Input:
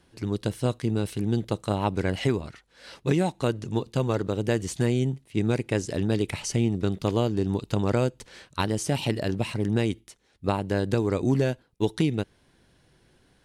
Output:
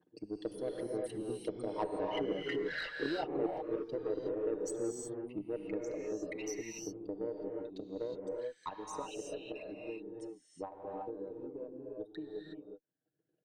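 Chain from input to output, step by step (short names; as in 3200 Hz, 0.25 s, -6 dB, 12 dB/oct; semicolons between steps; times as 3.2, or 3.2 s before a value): formant sharpening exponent 3; Doppler pass-by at 2.7, 9 m/s, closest 2 m; HPF 450 Hz 12 dB/oct; comb 6.5 ms, depth 58%; transient shaper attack +3 dB, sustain -9 dB; reverse; compressor 12:1, threshold -45 dBFS, peak gain reduction 19.5 dB; reverse; added harmonics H 3 -18 dB, 8 -36 dB, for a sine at -34.5 dBFS; non-linear reverb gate 0.39 s rising, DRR -0.5 dB; three-band squash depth 40%; gain +15 dB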